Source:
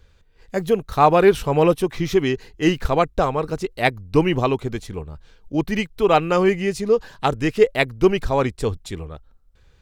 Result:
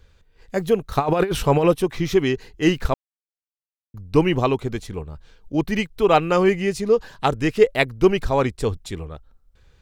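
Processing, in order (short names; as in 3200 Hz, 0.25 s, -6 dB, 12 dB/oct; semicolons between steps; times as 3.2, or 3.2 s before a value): 0.95–1.65 negative-ratio compressor -17 dBFS, ratio -0.5; 2.94–3.94 mute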